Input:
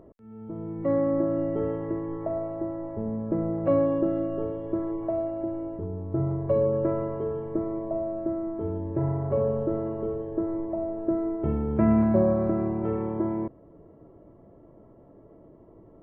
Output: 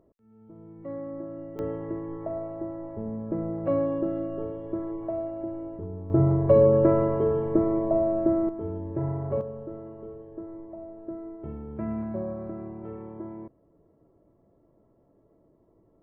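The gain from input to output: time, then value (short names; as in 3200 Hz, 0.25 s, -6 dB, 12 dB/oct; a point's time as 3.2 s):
-12 dB
from 1.59 s -3 dB
from 6.1 s +6 dB
from 8.49 s -2.5 dB
from 9.41 s -11 dB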